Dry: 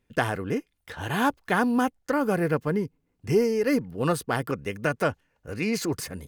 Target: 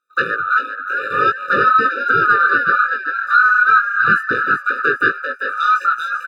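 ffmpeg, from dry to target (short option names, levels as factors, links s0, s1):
-filter_complex "[0:a]afftfilt=real='real(if(lt(b,960),b+48*(1-2*mod(floor(b/48),2)),b),0)':imag='imag(if(lt(b,960),b+48*(1-2*mod(floor(b/48),2)),b),0)':win_size=2048:overlap=0.75,afwtdn=0.0224,asplit=2[s0][s1];[s1]acompressor=threshold=0.0282:ratio=8,volume=0.841[s2];[s0][s2]amix=inputs=2:normalize=0,aeval=exprs='0.422*sin(PI/2*1.78*val(0)/0.422)':c=same,acrossover=split=4200[s3][s4];[s4]acompressor=threshold=0.00398:ratio=4:attack=1:release=60[s5];[s3][s5]amix=inputs=2:normalize=0,highpass=f=110:w=0.5412,highpass=f=110:w=1.3066,lowshelf=f=250:g=-7.5,asplit=6[s6][s7][s8][s9][s10][s11];[s7]adelay=392,afreqshift=130,volume=0.447[s12];[s8]adelay=784,afreqshift=260,volume=0.188[s13];[s9]adelay=1176,afreqshift=390,volume=0.0785[s14];[s10]adelay=1568,afreqshift=520,volume=0.0331[s15];[s11]adelay=1960,afreqshift=650,volume=0.014[s16];[s6][s12][s13][s14][s15][s16]amix=inputs=6:normalize=0,flanger=delay=17.5:depth=2.4:speed=2.7,afftfilt=real='re*eq(mod(floor(b*sr/1024/590),2),0)':imag='im*eq(mod(floor(b*sr/1024/590),2),0)':win_size=1024:overlap=0.75,volume=1.58"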